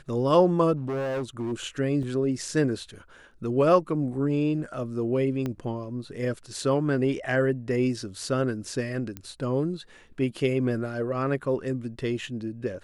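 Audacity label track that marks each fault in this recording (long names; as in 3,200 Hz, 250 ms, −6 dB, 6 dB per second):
0.760000	1.530000	clipping −26.5 dBFS
2.030000	2.030000	drop-out 2.1 ms
5.460000	5.460000	click −18 dBFS
9.170000	9.170000	click −20 dBFS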